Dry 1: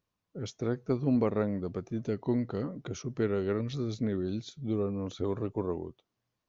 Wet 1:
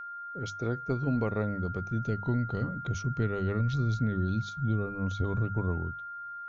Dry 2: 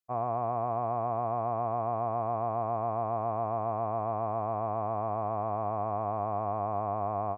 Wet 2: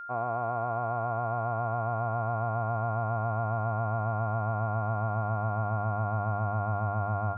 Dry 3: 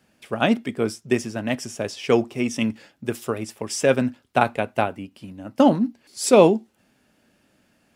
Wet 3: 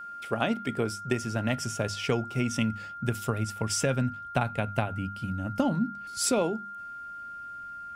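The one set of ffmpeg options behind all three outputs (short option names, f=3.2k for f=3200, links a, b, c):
-af "bandreject=f=50:t=h:w=6,bandreject=f=100:t=h:w=6,bandreject=f=150:t=h:w=6,bandreject=f=200:t=h:w=6,asubboost=boost=8:cutoff=130,acompressor=threshold=-24dB:ratio=5,aeval=exprs='val(0)+0.0126*sin(2*PI*1400*n/s)':c=same"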